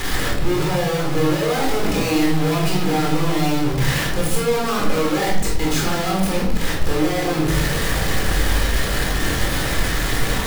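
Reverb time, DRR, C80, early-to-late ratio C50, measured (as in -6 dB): 0.75 s, -3.5 dB, 6.5 dB, 2.5 dB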